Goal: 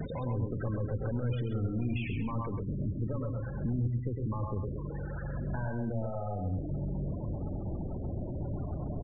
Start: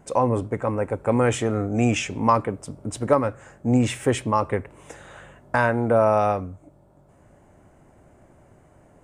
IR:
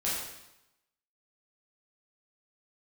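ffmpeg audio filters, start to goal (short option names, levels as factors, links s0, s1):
-filter_complex "[0:a]aeval=exprs='val(0)+0.5*0.0501*sgn(val(0))':c=same,acompressor=threshold=0.0251:ratio=1.5,aecho=1:1:106|212|318:0.501|0.0852|0.0145,asoftclip=type=hard:threshold=0.0794,equalizer=f=730:t=o:w=2:g=-5.5,acrossover=split=150[s0][s1];[s1]acompressor=threshold=0.0158:ratio=5[s2];[s0][s2]amix=inputs=2:normalize=0,asetnsamples=n=441:p=0,asendcmd='2.47 lowpass f 1400',lowpass=4300,afftfilt=real='re*gte(hypot(re,im),0.02)':imag='im*gte(hypot(re,im),0.02)':win_size=1024:overlap=0.75,aecho=1:1:132:0.398"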